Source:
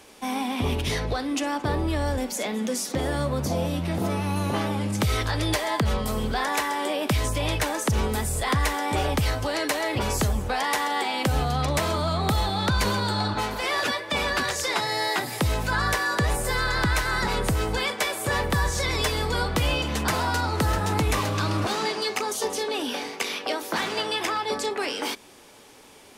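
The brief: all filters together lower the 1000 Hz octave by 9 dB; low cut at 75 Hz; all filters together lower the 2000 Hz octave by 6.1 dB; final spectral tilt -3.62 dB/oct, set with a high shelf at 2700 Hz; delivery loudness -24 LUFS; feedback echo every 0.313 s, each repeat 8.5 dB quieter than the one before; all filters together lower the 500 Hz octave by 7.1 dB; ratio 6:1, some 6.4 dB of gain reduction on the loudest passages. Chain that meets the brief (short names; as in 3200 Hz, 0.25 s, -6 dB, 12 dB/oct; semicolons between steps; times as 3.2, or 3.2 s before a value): HPF 75 Hz; bell 500 Hz -6.5 dB; bell 1000 Hz -8.5 dB; bell 2000 Hz -7 dB; high shelf 2700 Hz +6 dB; compressor 6:1, threshold -28 dBFS; feedback echo 0.313 s, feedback 38%, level -8.5 dB; gain +6.5 dB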